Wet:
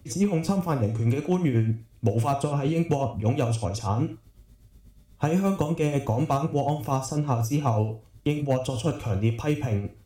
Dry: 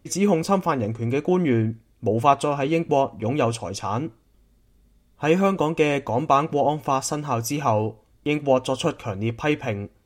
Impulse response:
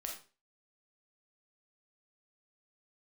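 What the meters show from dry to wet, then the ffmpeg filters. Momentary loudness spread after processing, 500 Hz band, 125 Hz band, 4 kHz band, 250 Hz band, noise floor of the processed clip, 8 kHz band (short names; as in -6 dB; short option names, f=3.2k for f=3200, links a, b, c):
4 LU, -6.0 dB, +3.5 dB, -6.5 dB, -2.0 dB, -56 dBFS, -5.0 dB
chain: -filter_complex "[0:a]tremolo=f=8.2:d=0.74,asplit=2[a][b];[1:a]atrim=start_sample=2205,atrim=end_sample=4410,highshelf=f=2k:g=10.5[c];[b][c]afir=irnorm=-1:irlink=0,volume=-2dB[d];[a][d]amix=inputs=2:normalize=0,asoftclip=type=hard:threshold=-9dB,equalizer=f=94:t=o:w=1.7:g=12.5,acrossover=split=160|1000|6800[e][f][g][h];[e]acompressor=threshold=-26dB:ratio=4[i];[f]acompressor=threshold=-23dB:ratio=4[j];[g]acompressor=threshold=-40dB:ratio=4[k];[h]acompressor=threshold=-44dB:ratio=4[l];[i][j][k][l]amix=inputs=4:normalize=0,volume=-1dB"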